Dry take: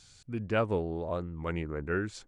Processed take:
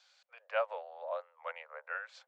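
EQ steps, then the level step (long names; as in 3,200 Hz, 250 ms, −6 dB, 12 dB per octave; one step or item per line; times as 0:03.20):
Butterworth high-pass 520 Hz 96 dB per octave
high-frequency loss of the air 190 metres
−1.5 dB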